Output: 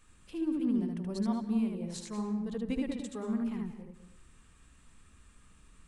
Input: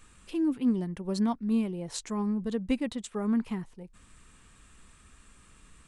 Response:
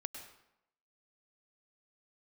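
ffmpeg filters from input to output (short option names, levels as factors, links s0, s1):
-filter_complex "[0:a]asplit=2[s0][s1];[1:a]atrim=start_sample=2205,lowshelf=f=370:g=8.5,adelay=76[s2];[s1][s2]afir=irnorm=-1:irlink=0,volume=0.841[s3];[s0][s3]amix=inputs=2:normalize=0,volume=0.422"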